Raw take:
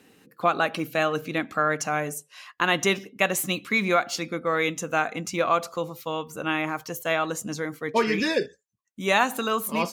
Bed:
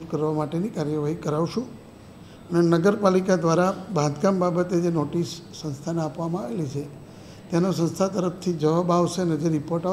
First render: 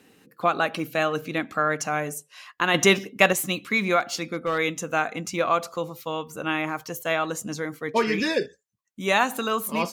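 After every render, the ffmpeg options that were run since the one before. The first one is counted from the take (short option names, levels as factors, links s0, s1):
-filter_complex "[0:a]asettb=1/sr,asplit=3[s0][s1][s2];[s0]atrim=end=2.744[s3];[s1]atrim=start=2.74:end=3.33,asetpts=PTS-STARTPTS,afade=t=in:d=0.004:c=qsin,afade=t=out:st=0.586:d=0.004:c=qsin,acontrast=40[s4];[s2]atrim=start=3.326[s5];[s3][s4]acrossfade=d=0.004:c1=hsin:c2=qsin[s6];[s6][s5]acrossfade=d=0.004:c1=qsin:c2=hsin,asettb=1/sr,asplit=3[s7][s8][s9];[s7]atrim=end=4.004[s10];[s8]atrim=start=4:end=4.58,asetpts=PTS-STARTPTS,afade=t=in:d=0.004:c=qsin,afade=t=out:st=0.576:d=0.004:c=qsin,asoftclip=type=hard:threshold=0.106[s11];[s9]atrim=start=4.576[s12];[s10][s11]acrossfade=d=0.004:c1=hsin:c2=qsin[s13];[s13][s12]acrossfade=d=0.004:c1=qsin:c2=hsin"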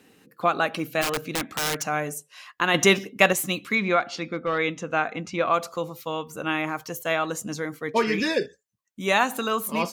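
-filter_complex "[0:a]asplit=3[s0][s1][s2];[s0]afade=t=out:st=1.01:d=0.02[s3];[s1]aeval=exprs='(mod(9.44*val(0)+1,2)-1)/9.44':c=same,afade=t=in:st=1.01:d=0.02,afade=t=out:st=1.84:d=0.02[s4];[s2]afade=t=in:st=1.84:d=0.02[s5];[s3][s4][s5]amix=inputs=3:normalize=0,asettb=1/sr,asplit=3[s6][s7][s8];[s6]atrim=end=3.754[s9];[s7]atrim=start=3.75:end=5.54,asetpts=PTS-STARTPTS,afade=t=in:d=0.004:c=qsin,afade=t=out:st=1.786:d=0.004:c=qsin,lowpass=4100[s10];[s8]atrim=start=5.536[s11];[s9][s10]acrossfade=d=0.004:c1=hsin:c2=qsin[s12];[s12][s11]acrossfade=d=0.004:c1=qsin:c2=hsin"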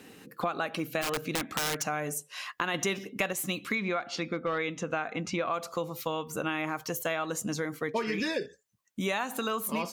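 -filter_complex "[0:a]asplit=2[s0][s1];[s1]alimiter=limit=0.158:level=0:latency=1:release=92,volume=0.841[s2];[s0][s2]amix=inputs=2:normalize=0,acompressor=threshold=0.0316:ratio=4"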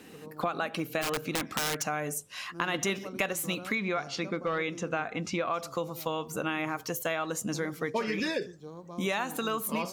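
-filter_complex "[1:a]volume=0.0631[s0];[0:a][s0]amix=inputs=2:normalize=0"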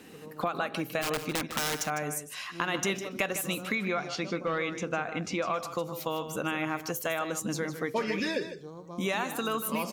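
-af "aecho=1:1:154:0.282"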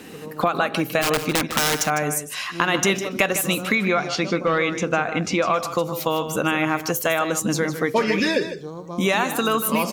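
-af "volume=3.16"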